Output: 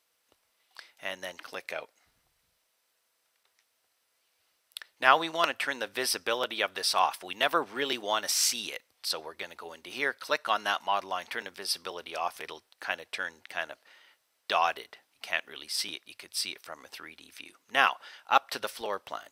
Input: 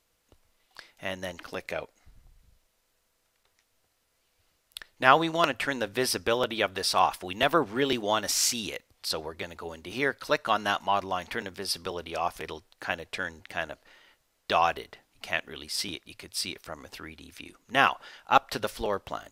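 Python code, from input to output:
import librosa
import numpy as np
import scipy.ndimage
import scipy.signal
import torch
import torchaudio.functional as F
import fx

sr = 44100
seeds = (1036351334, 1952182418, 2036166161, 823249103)

y = fx.highpass(x, sr, hz=760.0, slope=6)
y = fx.notch(y, sr, hz=6900.0, q=11.0)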